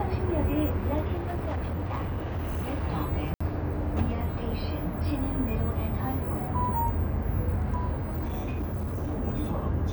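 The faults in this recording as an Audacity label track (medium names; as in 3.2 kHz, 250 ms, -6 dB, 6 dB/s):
1.140000	2.840000	clipped -27 dBFS
3.340000	3.400000	dropout 65 ms
7.980000	9.210000	clipped -27 dBFS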